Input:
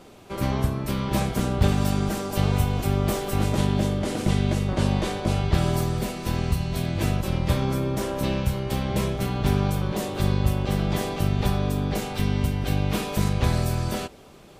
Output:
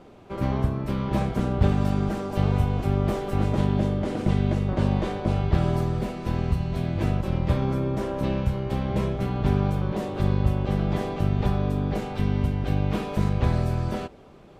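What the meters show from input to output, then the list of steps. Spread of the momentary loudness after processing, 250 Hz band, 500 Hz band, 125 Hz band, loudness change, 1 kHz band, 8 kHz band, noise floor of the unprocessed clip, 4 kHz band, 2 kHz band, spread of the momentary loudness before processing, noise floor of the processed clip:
4 LU, 0.0 dB, -0.5 dB, 0.0 dB, -0.5 dB, -1.5 dB, under -10 dB, -48 dBFS, -8.0 dB, -4.5 dB, 4 LU, -49 dBFS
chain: low-pass 1.5 kHz 6 dB/octave

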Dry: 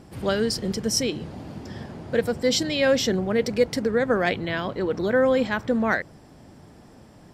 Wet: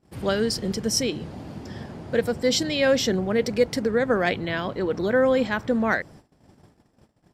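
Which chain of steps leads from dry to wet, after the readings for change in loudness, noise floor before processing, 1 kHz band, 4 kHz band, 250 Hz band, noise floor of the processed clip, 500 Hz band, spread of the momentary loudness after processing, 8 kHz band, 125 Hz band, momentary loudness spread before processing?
0.0 dB, -50 dBFS, 0.0 dB, 0.0 dB, 0.0 dB, -65 dBFS, 0.0 dB, 17 LU, 0.0 dB, 0.0 dB, 17 LU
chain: gate -46 dBFS, range -24 dB

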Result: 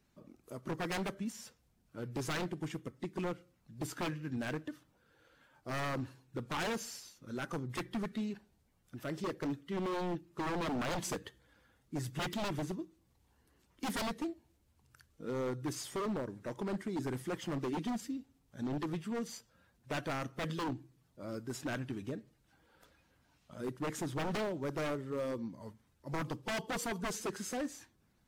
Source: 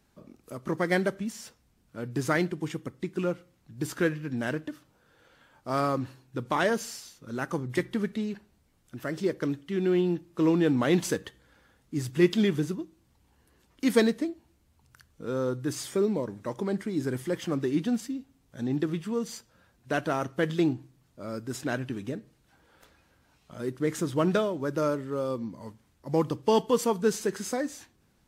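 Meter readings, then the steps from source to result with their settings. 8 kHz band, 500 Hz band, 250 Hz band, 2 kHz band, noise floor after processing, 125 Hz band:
-5.5 dB, -11.5 dB, -10.5 dB, -7.5 dB, -73 dBFS, -8.0 dB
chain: coarse spectral quantiser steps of 15 dB; wavefolder -25 dBFS; trim -5.5 dB

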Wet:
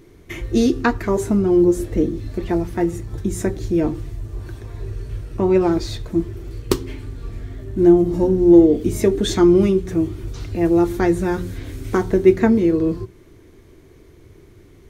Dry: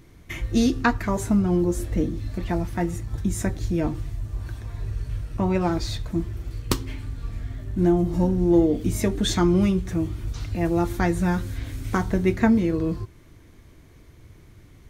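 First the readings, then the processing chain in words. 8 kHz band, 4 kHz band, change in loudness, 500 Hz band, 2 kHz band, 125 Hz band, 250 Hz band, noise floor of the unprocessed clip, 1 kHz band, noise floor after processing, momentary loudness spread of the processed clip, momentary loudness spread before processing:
+1.0 dB, +1.0 dB, +6.5 dB, +9.5 dB, +1.0 dB, +0.5 dB, +5.5 dB, -50 dBFS, +2.0 dB, -47 dBFS, 19 LU, 14 LU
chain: peaking EQ 390 Hz +11.5 dB 0.59 oct; hum notches 60/120/180 Hz; trim +1 dB

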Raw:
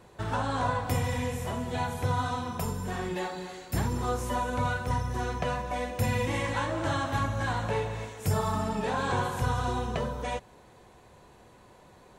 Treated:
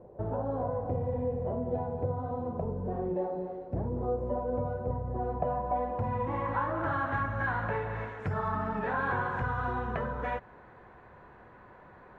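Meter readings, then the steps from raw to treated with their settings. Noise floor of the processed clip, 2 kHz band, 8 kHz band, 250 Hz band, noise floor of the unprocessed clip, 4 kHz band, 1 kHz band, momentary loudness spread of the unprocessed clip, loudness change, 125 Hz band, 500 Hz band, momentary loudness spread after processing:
-54 dBFS, -1.5 dB, under -30 dB, -2.5 dB, -55 dBFS, under -15 dB, -2.0 dB, 5 LU, -2.0 dB, -4.0 dB, +0.5 dB, 4 LU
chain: compression 3:1, threshold -31 dBFS, peak gain reduction 7 dB; low-pass sweep 570 Hz -> 1.6 kHz, 4.93–7.19 s

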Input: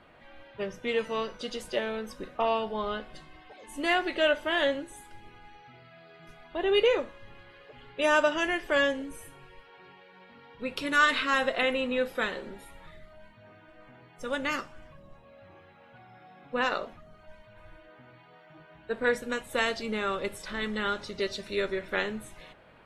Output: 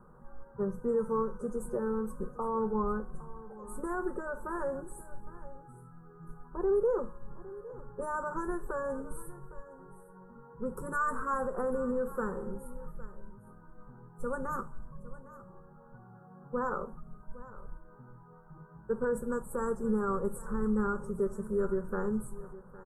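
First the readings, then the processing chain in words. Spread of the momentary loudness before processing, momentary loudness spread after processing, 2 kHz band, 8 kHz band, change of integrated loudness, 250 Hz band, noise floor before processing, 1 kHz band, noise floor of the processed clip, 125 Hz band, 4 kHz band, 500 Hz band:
18 LU, 21 LU, -14.0 dB, -6.0 dB, -5.5 dB, +0.5 dB, -56 dBFS, -4.5 dB, -54 dBFS, +5.5 dB, under -40 dB, -3.5 dB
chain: elliptic band-stop 1.4–8.3 kHz, stop band 70 dB; bass shelf 250 Hz +11.5 dB; peak limiter -21 dBFS, peak gain reduction 8.5 dB; static phaser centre 440 Hz, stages 8; delay 809 ms -17.5 dB

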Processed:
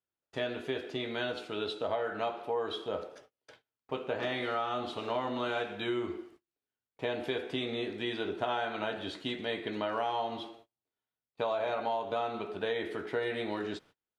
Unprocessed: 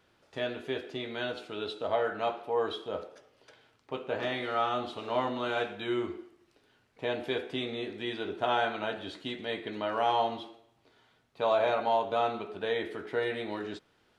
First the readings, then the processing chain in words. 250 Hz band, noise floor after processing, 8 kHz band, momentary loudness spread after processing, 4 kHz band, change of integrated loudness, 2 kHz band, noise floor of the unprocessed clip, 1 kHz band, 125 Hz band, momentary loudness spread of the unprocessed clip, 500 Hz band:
-0.5 dB, under -85 dBFS, no reading, 6 LU, -1.0 dB, -2.5 dB, -1.5 dB, -69 dBFS, -4.0 dB, -0.5 dB, 11 LU, -2.5 dB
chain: gate -57 dBFS, range -32 dB; compression, threshold -31 dBFS, peak gain reduction 9 dB; trim +2 dB

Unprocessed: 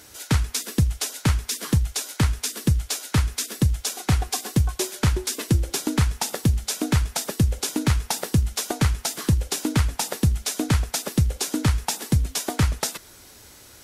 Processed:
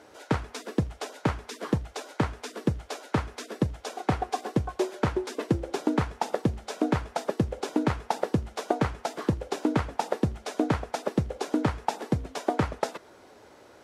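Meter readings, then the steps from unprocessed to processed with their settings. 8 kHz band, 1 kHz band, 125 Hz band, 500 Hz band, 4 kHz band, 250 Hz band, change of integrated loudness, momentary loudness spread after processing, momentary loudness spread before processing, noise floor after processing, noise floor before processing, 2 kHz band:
-17.5 dB, +2.0 dB, -9.5 dB, +3.5 dB, -12.0 dB, -2.0 dB, -6.0 dB, 4 LU, 3 LU, -54 dBFS, -48 dBFS, -4.5 dB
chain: band-pass filter 580 Hz, Q 1; trim +5 dB

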